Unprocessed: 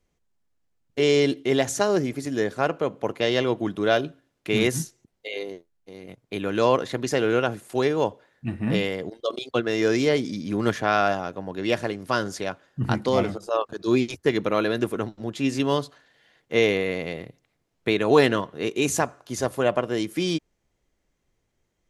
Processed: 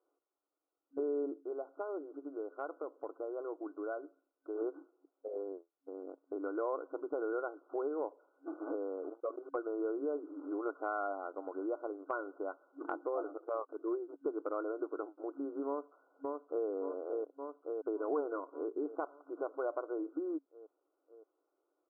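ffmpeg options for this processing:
-filter_complex "[0:a]asettb=1/sr,asplit=3[s0][s1][s2];[s0]atrim=end=8.484[s3];[s1]atrim=start=8.48:end=11.8,asetpts=PTS-STARTPTS,afade=t=in:d=0.004:c=qsin,afade=t=out:st=3.316:d=0.004:c=qsin,acrusher=bits=8:dc=4:mix=0:aa=0.000001[s4];[s2]atrim=start=11.796[s5];[s3][s4]acrossfade=d=0.004:c1=hsin:c2=qsin[s6];[s6][s5]acrossfade=d=0.004:c1=qsin:c2=hsin,asplit=2[s7][s8];[s8]afade=t=in:st=15.67:d=0.01,afade=t=out:st=16.67:d=0.01,aecho=0:1:570|1140|1710|2280|2850|3420|3990|4560:0.530884|0.318531|0.191118|0.114671|0.0688026|0.0412816|0.0247689|0.0148614[s9];[s7][s9]amix=inputs=2:normalize=0,asplit=3[s10][s11][s12];[s10]atrim=end=1.68,asetpts=PTS-STARTPTS,afade=t=out:st=1.38:d=0.3:c=exp:silence=0.334965[s13];[s11]atrim=start=1.68:end=4.31,asetpts=PTS-STARTPTS,volume=0.335[s14];[s12]atrim=start=4.31,asetpts=PTS-STARTPTS,afade=t=in:d=0.3:c=exp:silence=0.334965[s15];[s13][s14][s15]concat=n=3:v=0:a=1,afftfilt=real='re*between(b*sr/4096,270,1500)':imag='im*between(b*sr/4096,270,1500)':win_size=4096:overlap=0.75,bandreject=f=920:w=14,acompressor=threshold=0.0112:ratio=2.5,volume=0.891"

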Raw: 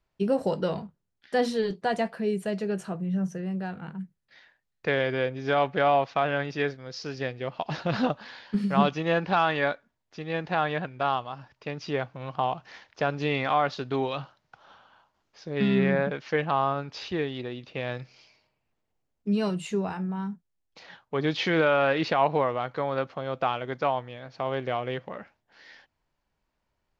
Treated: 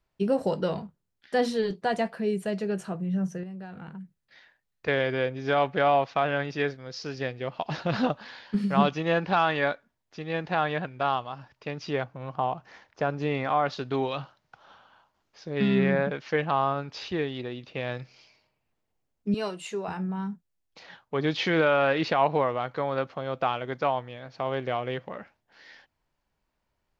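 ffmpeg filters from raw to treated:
-filter_complex "[0:a]asettb=1/sr,asplit=3[s0][s1][s2];[s0]atrim=end=3.434[s3];[s1]atrim=start=3.43:end=4.88,asetpts=PTS-STARTPTS,afade=t=in:d=0.004:c=qsin,afade=t=out:st=1.446:d=0.004:c=qsin,acompressor=threshold=0.0141:ratio=6:attack=3.2:release=140:knee=1:detection=peak[s4];[s2]atrim=start=4.876[s5];[s3][s4]acrossfade=d=0.004:c1=hsin:c2=qsin[s6];[s6][s5]acrossfade=d=0.004:c1=qsin:c2=hsin,asettb=1/sr,asplit=3[s7][s8][s9];[s7]atrim=end=12.044[s10];[s8]atrim=start=12.04:end=13.66,asetpts=PTS-STARTPTS,afade=t=in:d=0.004:c=qsin,afade=t=out:st=1.616:d=0.004:c=qsin,equalizer=f=3700:t=o:w=1.8:g=-7.5[s11];[s9]atrim=start=13.656[s12];[s10][s11]acrossfade=d=0.004:c1=hsin:c2=qsin[s13];[s13][s12]acrossfade=d=0.004:c1=qsin:c2=hsin,asettb=1/sr,asplit=3[s14][s15][s16];[s14]atrim=end=19.344[s17];[s15]atrim=start=19.34:end=19.88,asetpts=PTS-STARTPTS,afade=t=in:d=0.004:c=qsin,afade=t=out:st=0.536:d=0.004:c=qsin,highpass=390[s18];[s16]atrim=start=19.876[s19];[s17][s18]acrossfade=d=0.004:c1=hsin:c2=qsin[s20];[s20][s19]acrossfade=d=0.004:c1=qsin:c2=hsin"

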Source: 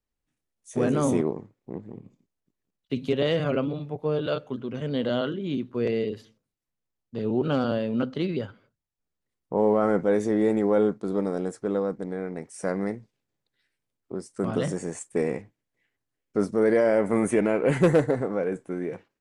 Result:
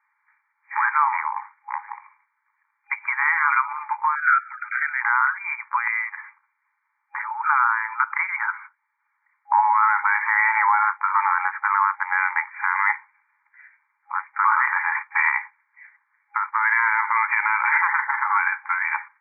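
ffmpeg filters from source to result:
-filter_complex "[0:a]asettb=1/sr,asplit=3[s0][s1][s2];[s0]atrim=end=4.154[s3];[s1]atrim=start=4.15:end=5.01,asetpts=PTS-STARTPTS,afade=t=in:d=0.004:c=qsin,afade=t=out:st=0.856:d=0.004:c=qsin,asuperstop=centerf=900:order=20:qfactor=1.5[s4];[s2]atrim=start=5.006[s5];[s3][s4]acrossfade=d=0.004:c1=hsin:c2=qsin[s6];[s6][s5]acrossfade=d=0.004:c1=qsin:c2=hsin,asettb=1/sr,asplit=3[s7][s8][s9];[s7]atrim=end=9.834[s10];[s8]atrim=start=9.83:end=15.28,asetpts=PTS-STARTPTS,afade=t=in:d=0.004:c=qsin,afade=t=out:st=5.446:d=0.004:c=qsin,highpass=f=540:w=0.5412,highpass=f=540:w=1.3066[s11];[s9]atrim=start=15.276[s12];[s10][s11]acrossfade=d=0.004:c1=hsin:c2=qsin[s13];[s13][s12]acrossfade=d=0.004:c1=qsin:c2=hsin,acompressor=threshold=0.0398:ratio=12,afftfilt=real='re*between(b*sr/4096,820,2400)':imag='im*between(b*sr/4096,820,2400)':win_size=4096:overlap=0.75,alimiter=level_in=59.6:limit=0.891:release=50:level=0:latency=1,volume=0.422"

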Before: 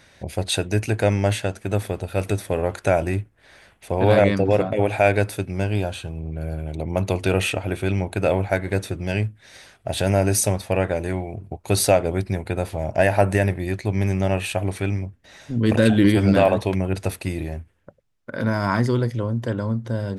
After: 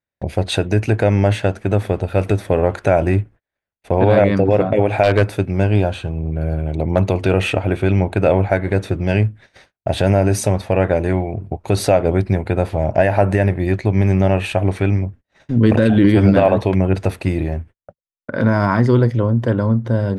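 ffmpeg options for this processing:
-filter_complex "[0:a]asettb=1/sr,asplit=3[s0][s1][s2];[s0]atrim=end=5.034[s3];[s1]atrim=start=5.03:end=7.09,asetpts=PTS-STARTPTS,afade=t=in:d=0.004:c=qsin,afade=t=out:st=2.056:d=0.004:c=qsin,aeval=exprs='0.316*(abs(mod(val(0)/0.316+3,4)-2)-1)':c=same[s4];[s2]atrim=start=7.086[s5];[s3][s4]acrossfade=d=0.004:c1=hsin:c2=qsin[s6];[s6][s5]acrossfade=d=0.004:c1=qsin:c2=hsin,agate=range=0.00708:threshold=0.00708:ratio=16:detection=peak,lowpass=f=1900:p=1,alimiter=limit=0.282:level=0:latency=1:release=133,volume=2.51"

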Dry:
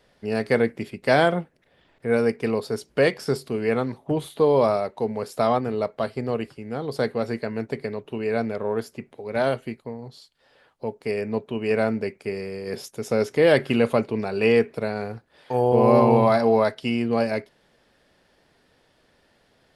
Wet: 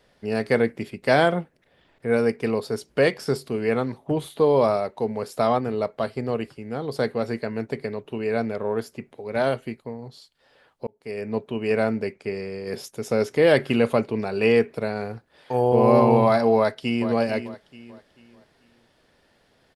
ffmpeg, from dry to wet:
-filter_complex "[0:a]asettb=1/sr,asplit=3[s0][s1][s2];[s0]atrim=end=12.144[s3];[s1]atrim=start=12.14:end=12.67,asetpts=PTS-STARTPTS,afade=t=in:d=0.004:c=qsin,afade=t=out:st=0.526:d=0.004:c=qsin,lowpass=7400[s4];[s2]atrim=start=12.666[s5];[s3][s4]acrossfade=d=0.004:c1=hsin:c2=qsin[s6];[s6][s5]acrossfade=d=0.004:c1=qsin:c2=hsin,asplit=2[s7][s8];[s8]afade=t=in:st=16.57:d=0.01,afade=t=out:st=17.1:d=0.01,aecho=0:1:440|880|1320|1760:0.281838|0.0986434|0.0345252|0.0120838[s9];[s7][s9]amix=inputs=2:normalize=0,asplit=2[s10][s11];[s10]atrim=end=10.87,asetpts=PTS-STARTPTS,afade=t=out:st=10.866:d=0.004:c=hsin[s12];[s11]atrim=start=10.87,asetpts=PTS-STARTPTS,afade=t=in:d=0.5[s13];[s12][s13]concat=n=2:v=0:a=1"

